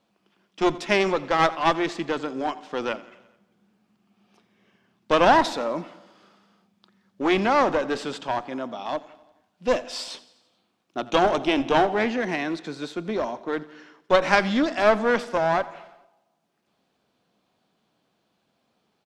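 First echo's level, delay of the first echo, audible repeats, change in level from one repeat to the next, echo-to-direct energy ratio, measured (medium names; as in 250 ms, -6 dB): -20.0 dB, 86 ms, 4, -4.5 dB, -18.0 dB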